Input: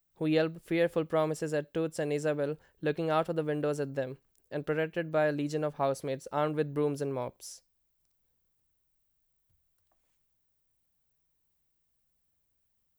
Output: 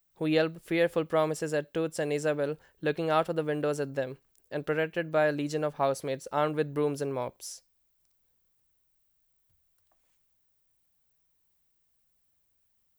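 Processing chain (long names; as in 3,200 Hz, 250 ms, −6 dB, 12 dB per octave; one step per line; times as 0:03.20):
low-shelf EQ 490 Hz −4.5 dB
level +4 dB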